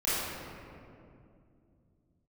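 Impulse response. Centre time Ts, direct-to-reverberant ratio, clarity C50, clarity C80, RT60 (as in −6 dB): 161 ms, −13.0 dB, −4.5 dB, −1.5 dB, 2.5 s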